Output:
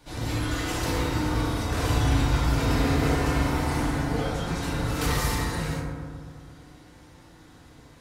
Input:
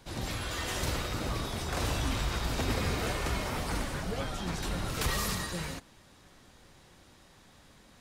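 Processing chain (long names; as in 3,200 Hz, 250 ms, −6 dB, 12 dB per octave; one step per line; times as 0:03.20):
feedback delay network reverb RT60 1.9 s, low-frequency decay 1.35×, high-frequency decay 0.3×, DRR −6 dB
level −1.5 dB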